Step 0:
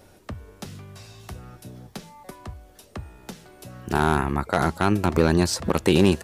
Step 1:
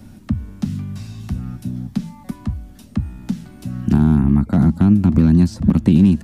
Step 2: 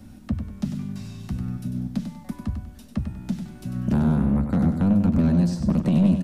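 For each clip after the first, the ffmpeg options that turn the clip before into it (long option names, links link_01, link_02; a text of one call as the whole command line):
ffmpeg -i in.wav -filter_complex "[0:a]lowshelf=frequency=320:width_type=q:width=3:gain=10.5,acrossover=split=230|700[link_01][link_02][link_03];[link_01]acompressor=threshold=-15dB:ratio=4[link_04];[link_02]acompressor=threshold=-22dB:ratio=4[link_05];[link_03]acompressor=threshold=-40dB:ratio=4[link_06];[link_04][link_05][link_06]amix=inputs=3:normalize=0,acrossover=split=7400[link_07][link_08];[link_08]alimiter=level_in=17.5dB:limit=-24dB:level=0:latency=1,volume=-17.5dB[link_09];[link_07][link_09]amix=inputs=2:normalize=0,volume=2.5dB" out.wav
ffmpeg -i in.wav -af "asoftclip=type=tanh:threshold=-10dB,flanger=delay=3.8:depth=1.9:regen=-68:speed=0.44:shape=sinusoidal,aecho=1:1:97|194|291|388:0.422|0.143|0.0487|0.0166" out.wav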